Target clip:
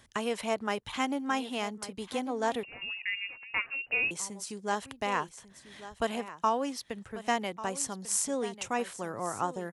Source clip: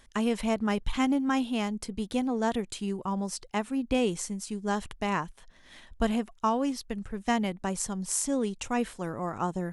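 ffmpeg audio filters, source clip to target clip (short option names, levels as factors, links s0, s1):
-filter_complex "[0:a]highpass=73,equalizer=f=120:t=o:w=0.77:g=7,acrossover=split=340[s0][s1];[s0]acompressor=threshold=0.00501:ratio=6[s2];[s2][s1]amix=inputs=2:normalize=0,aecho=1:1:1143:0.188,asettb=1/sr,asplit=3[s3][s4][s5];[s3]atrim=end=2.634[s6];[s4]atrim=start=2.63:end=4.11,asetpts=PTS-STARTPTS,afade=t=in:d=0.004:c=qsin,afade=t=out:st=1.476:d=0.004:c=qsin,lowpass=f=2600:t=q:w=0.5098,lowpass=f=2600:t=q:w=0.6013,lowpass=f=2600:t=q:w=0.9,lowpass=f=2600:t=q:w=2.563,afreqshift=-3000[s7];[s5]atrim=start=4.106[s8];[s6][s7]acrossfade=d=0.004:c1=hsin:c2=qsin[s9];[s9][s8]acrossfade=d=0.004:c1=qsin:c2=hsin"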